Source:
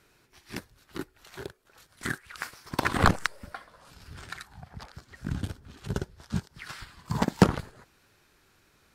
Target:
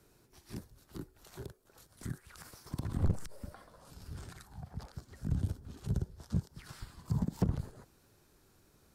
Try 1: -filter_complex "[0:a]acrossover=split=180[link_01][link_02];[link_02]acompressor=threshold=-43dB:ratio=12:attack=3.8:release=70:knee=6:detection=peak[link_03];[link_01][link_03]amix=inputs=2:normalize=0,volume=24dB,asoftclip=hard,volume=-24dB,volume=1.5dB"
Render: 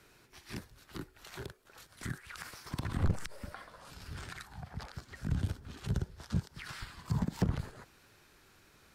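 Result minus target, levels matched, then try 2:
2,000 Hz band +10.5 dB
-filter_complex "[0:a]acrossover=split=180[link_01][link_02];[link_02]acompressor=threshold=-43dB:ratio=12:attack=3.8:release=70:knee=6:detection=peak,equalizer=frequency=2200:width_type=o:width=2.3:gain=-12[link_03];[link_01][link_03]amix=inputs=2:normalize=0,volume=24dB,asoftclip=hard,volume=-24dB,volume=1.5dB"

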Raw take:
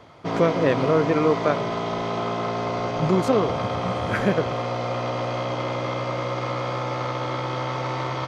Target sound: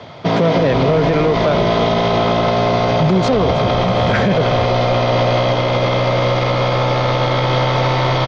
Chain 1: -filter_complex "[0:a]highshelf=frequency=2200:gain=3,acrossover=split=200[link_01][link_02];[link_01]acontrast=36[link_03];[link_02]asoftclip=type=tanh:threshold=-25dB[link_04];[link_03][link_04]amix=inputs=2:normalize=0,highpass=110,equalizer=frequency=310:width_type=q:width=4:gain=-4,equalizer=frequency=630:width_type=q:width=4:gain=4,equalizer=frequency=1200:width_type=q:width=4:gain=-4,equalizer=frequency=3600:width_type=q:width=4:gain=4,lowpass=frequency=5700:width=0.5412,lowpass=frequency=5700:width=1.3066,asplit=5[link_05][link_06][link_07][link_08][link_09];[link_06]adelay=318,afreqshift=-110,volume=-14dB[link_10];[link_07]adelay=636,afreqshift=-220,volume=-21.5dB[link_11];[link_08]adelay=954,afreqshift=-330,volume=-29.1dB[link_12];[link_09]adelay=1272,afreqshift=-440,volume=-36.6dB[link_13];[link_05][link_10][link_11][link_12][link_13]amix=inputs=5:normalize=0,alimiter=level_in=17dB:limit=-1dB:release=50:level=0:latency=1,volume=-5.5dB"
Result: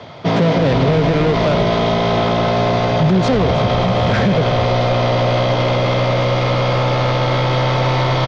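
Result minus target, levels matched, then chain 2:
soft clipping: distortion +8 dB
-filter_complex "[0:a]highshelf=frequency=2200:gain=3,acrossover=split=200[link_01][link_02];[link_01]acontrast=36[link_03];[link_02]asoftclip=type=tanh:threshold=-15.5dB[link_04];[link_03][link_04]amix=inputs=2:normalize=0,highpass=110,equalizer=frequency=310:width_type=q:width=4:gain=-4,equalizer=frequency=630:width_type=q:width=4:gain=4,equalizer=frequency=1200:width_type=q:width=4:gain=-4,equalizer=frequency=3600:width_type=q:width=4:gain=4,lowpass=frequency=5700:width=0.5412,lowpass=frequency=5700:width=1.3066,asplit=5[link_05][link_06][link_07][link_08][link_09];[link_06]adelay=318,afreqshift=-110,volume=-14dB[link_10];[link_07]adelay=636,afreqshift=-220,volume=-21.5dB[link_11];[link_08]adelay=954,afreqshift=-330,volume=-29.1dB[link_12];[link_09]adelay=1272,afreqshift=-440,volume=-36.6dB[link_13];[link_05][link_10][link_11][link_12][link_13]amix=inputs=5:normalize=0,alimiter=level_in=17dB:limit=-1dB:release=50:level=0:latency=1,volume=-5.5dB"

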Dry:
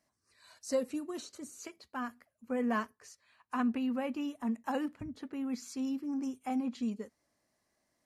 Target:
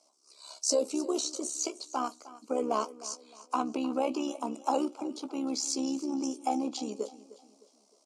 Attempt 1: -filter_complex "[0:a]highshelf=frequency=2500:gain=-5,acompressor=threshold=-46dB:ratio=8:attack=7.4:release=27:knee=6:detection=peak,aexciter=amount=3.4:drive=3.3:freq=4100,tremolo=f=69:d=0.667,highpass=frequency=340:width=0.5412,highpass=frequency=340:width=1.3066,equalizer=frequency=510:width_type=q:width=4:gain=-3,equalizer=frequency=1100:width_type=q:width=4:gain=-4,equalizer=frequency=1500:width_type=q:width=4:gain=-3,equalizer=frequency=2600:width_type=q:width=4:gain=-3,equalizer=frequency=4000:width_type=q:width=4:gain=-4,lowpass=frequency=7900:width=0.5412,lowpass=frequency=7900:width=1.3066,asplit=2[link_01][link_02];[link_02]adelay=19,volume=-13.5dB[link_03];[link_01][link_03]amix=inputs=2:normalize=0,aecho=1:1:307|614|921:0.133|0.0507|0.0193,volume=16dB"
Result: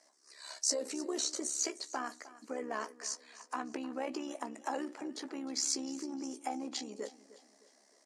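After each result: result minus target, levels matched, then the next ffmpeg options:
downward compressor: peak gain reduction +9.5 dB; 2,000 Hz band +8.5 dB
-filter_complex "[0:a]highshelf=frequency=2500:gain=-5,acompressor=threshold=-35dB:ratio=8:attack=7.4:release=27:knee=6:detection=peak,aexciter=amount=3.4:drive=3.3:freq=4100,tremolo=f=69:d=0.667,highpass=frequency=340:width=0.5412,highpass=frequency=340:width=1.3066,equalizer=frequency=510:width_type=q:width=4:gain=-3,equalizer=frequency=1100:width_type=q:width=4:gain=-4,equalizer=frequency=1500:width_type=q:width=4:gain=-3,equalizer=frequency=2600:width_type=q:width=4:gain=-3,equalizer=frequency=4000:width_type=q:width=4:gain=-4,lowpass=frequency=7900:width=0.5412,lowpass=frequency=7900:width=1.3066,asplit=2[link_01][link_02];[link_02]adelay=19,volume=-13.5dB[link_03];[link_01][link_03]amix=inputs=2:normalize=0,aecho=1:1:307|614|921:0.133|0.0507|0.0193,volume=16dB"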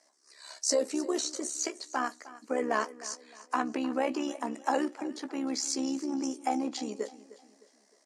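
2,000 Hz band +11.0 dB
-filter_complex "[0:a]asuperstop=centerf=1800:order=4:qfactor=1.6,highshelf=frequency=2500:gain=-5,acompressor=threshold=-35dB:ratio=8:attack=7.4:release=27:knee=6:detection=peak,aexciter=amount=3.4:drive=3.3:freq=4100,tremolo=f=69:d=0.667,highpass=frequency=340:width=0.5412,highpass=frequency=340:width=1.3066,equalizer=frequency=510:width_type=q:width=4:gain=-3,equalizer=frequency=1100:width_type=q:width=4:gain=-4,equalizer=frequency=1500:width_type=q:width=4:gain=-3,equalizer=frequency=2600:width_type=q:width=4:gain=-3,equalizer=frequency=4000:width_type=q:width=4:gain=-4,lowpass=frequency=7900:width=0.5412,lowpass=frequency=7900:width=1.3066,asplit=2[link_01][link_02];[link_02]adelay=19,volume=-13.5dB[link_03];[link_01][link_03]amix=inputs=2:normalize=0,aecho=1:1:307|614|921:0.133|0.0507|0.0193,volume=16dB"

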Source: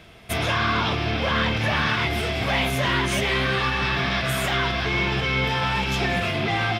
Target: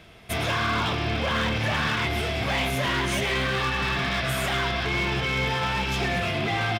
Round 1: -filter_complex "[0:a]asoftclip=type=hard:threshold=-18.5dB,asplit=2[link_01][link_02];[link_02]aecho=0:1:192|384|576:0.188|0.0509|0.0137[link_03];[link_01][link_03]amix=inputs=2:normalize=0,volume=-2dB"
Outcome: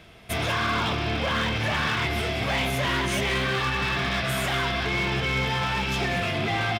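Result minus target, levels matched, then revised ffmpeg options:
echo 83 ms late
-filter_complex "[0:a]asoftclip=type=hard:threshold=-18.5dB,asplit=2[link_01][link_02];[link_02]aecho=0:1:109|218|327:0.188|0.0509|0.0137[link_03];[link_01][link_03]amix=inputs=2:normalize=0,volume=-2dB"

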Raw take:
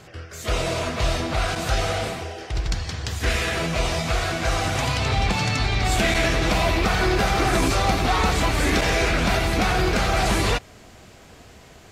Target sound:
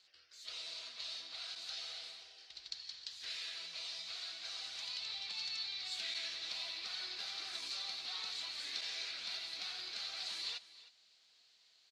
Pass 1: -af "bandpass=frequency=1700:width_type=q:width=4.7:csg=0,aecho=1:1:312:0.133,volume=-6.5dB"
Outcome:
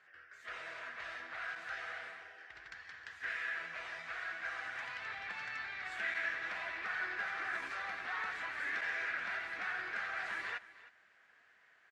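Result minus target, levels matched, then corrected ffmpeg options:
4,000 Hz band −15.0 dB
-af "bandpass=frequency=4200:width_type=q:width=4.7:csg=0,aecho=1:1:312:0.133,volume=-6.5dB"

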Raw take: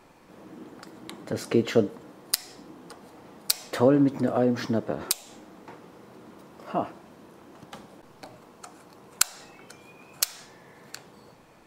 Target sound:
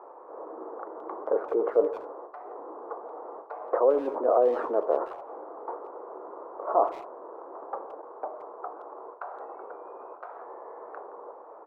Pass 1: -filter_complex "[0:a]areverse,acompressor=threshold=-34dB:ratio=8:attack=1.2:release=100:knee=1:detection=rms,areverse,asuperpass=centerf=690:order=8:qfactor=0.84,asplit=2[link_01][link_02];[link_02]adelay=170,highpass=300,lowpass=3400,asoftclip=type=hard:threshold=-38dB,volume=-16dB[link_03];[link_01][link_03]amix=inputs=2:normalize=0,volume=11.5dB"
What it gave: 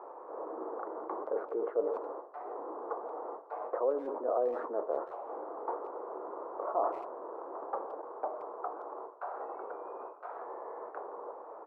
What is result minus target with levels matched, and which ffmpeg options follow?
downward compressor: peak gain reduction +9 dB
-filter_complex "[0:a]areverse,acompressor=threshold=-24dB:ratio=8:attack=1.2:release=100:knee=1:detection=rms,areverse,asuperpass=centerf=690:order=8:qfactor=0.84,asplit=2[link_01][link_02];[link_02]adelay=170,highpass=300,lowpass=3400,asoftclip=type=hard:threshold=-38dB,volume=-16dB[link_03];[link_01][link_03]amix=inputs=2:normalize=0,volume=11.5dB"

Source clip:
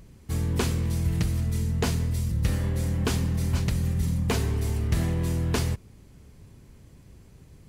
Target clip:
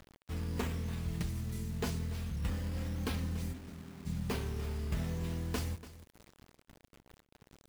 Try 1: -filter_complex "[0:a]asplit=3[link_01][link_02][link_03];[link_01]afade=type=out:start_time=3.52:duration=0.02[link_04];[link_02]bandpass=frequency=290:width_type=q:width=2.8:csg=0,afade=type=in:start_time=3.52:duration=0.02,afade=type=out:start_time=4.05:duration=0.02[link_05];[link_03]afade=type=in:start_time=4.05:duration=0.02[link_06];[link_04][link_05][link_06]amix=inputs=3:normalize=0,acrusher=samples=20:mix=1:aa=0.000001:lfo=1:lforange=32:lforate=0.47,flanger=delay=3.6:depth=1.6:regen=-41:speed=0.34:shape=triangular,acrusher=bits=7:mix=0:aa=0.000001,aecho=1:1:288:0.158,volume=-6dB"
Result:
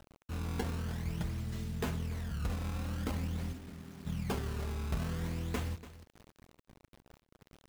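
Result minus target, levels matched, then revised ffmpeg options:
sample-and-hold swept by an LFO: distortion +6 dB
-filter_complex "[0:a]asplit=3[link_01][link_02][link_03];[link_01]afade=type=out:start_time=3.52:duration=0.02[link_04];[link_02]bandpass=frequency=290:width_type=q:width=2.8:csg=0,afade=type=in:start_time=3.52:duration=0.02,afade=type=out:start_time=4.05:duration=0.02[link_05];[link_03]afade=type=in:start_time=4.05:duration=0.02[link_06];[link_04][link_05][link_06]amix=inputs=3:normalize=0,acrusher=samples=5:mix=1:aa=0.000001:lfo=1:lforange=8:lforate=0.47,flanger=delay=3.6:depth=1.6:regen=-41:speed=0.34:shape=triangular,acrusher=bits=7:mix=0:aa=0.000001,aecho=1:1:288:0.158,volume=-6dB"

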